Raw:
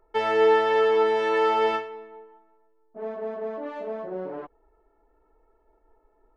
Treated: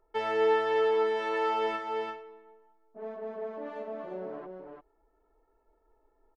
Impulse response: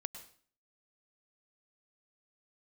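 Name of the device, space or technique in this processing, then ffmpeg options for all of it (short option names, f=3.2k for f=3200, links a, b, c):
ducked delay: -filter_complex "[0:a]asplit=3[a][b][c];[b]adelay=342,volume=-5dB[d];[c]apad=whole_len=295562[e];[d][e]sidechaincompress=threshold=-26dB:ratio=8:attack=16:release=279[f];[a][f]amix=inputs=2:normalize=0,volume=-6.5dB"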